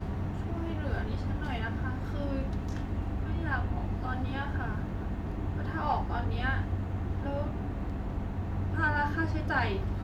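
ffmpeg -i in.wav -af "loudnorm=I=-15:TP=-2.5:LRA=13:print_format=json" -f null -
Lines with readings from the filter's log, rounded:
"input_i" : "-32.7",
"input_tp" : "-17.6",
"input_lra" : "2.0",
"input_thresh" : "-42.7",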